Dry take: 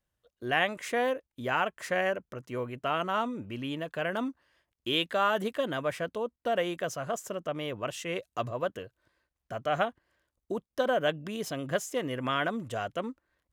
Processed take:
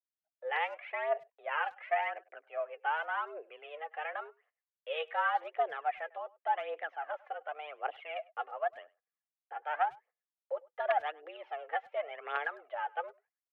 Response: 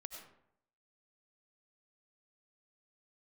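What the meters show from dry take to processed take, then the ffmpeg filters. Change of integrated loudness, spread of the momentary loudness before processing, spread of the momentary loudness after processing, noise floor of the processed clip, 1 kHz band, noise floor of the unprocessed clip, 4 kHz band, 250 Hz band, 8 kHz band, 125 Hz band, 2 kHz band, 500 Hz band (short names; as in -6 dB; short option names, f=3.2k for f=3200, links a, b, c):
-4.5 dB, 9 LU, 11 LU, under -85 dBFS, -1.0 dB, under -85 dBFS, -13.0 dB, under -30 dB, under -35 dB, under -40 dB, -3.5 dB, -7.0 dB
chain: -filter_complex "[0:a]agate=range=-22dB:threshold=-56dB:ratio=16:detection=peak,aphaser=in_gain=1:out_gain=1:delay=3.3:decay=0.64:speed=0.89:type=triangular,aeval=exprs='(mod(3.55*val(0)+1,2)-1)/3.55':c=same,highpass=f=340:t=q:w=0.5412,highpass=f=340:t=q:w=1.307,lowpass=f=2.5k:t=q:w=0.5176,lowpass=f=2.5k:t=q:w=0.7071,lowpass=f=2.5k:t=q:w=1.932,afreqshift=150,asplit=2[a][b];[b]adelay=100,highpass=300,lowpass=3.4k,asoftclip=type=hard:threshold=-20dB,volume=-23dB[c];[a][c]amix=inputs=2:normalize=0,volume=-6.5dB"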